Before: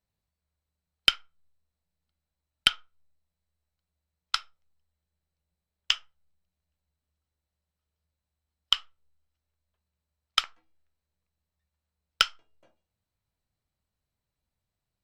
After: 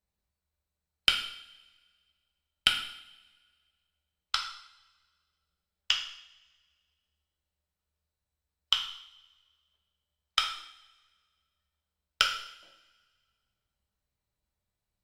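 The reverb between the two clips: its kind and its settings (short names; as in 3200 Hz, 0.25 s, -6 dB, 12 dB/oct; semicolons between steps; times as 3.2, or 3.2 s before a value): two-slope reverb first 0.66 s, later 1.8 s, from -19 dB, DRR 1.5 dB; gain -3 dB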